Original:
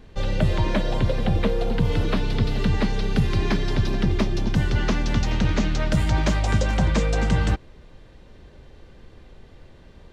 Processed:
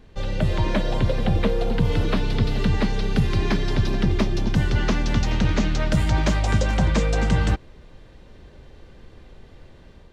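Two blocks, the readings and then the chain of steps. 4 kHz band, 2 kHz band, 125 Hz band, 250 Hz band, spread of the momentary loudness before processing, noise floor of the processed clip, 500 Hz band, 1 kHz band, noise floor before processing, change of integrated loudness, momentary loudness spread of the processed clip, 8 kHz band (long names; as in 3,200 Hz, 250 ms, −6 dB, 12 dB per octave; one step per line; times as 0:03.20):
+0.5 dB, +0.5 dB, +0.5 dB, +0.5 dB, 3 LU, −48 dBFS, +0.5 dB, +0.5 dB, −48 dBFS, +0.5 dB, 3 LU, +0.5 dB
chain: automatic gain control gain up to 3.5 dB
level −2.5 dB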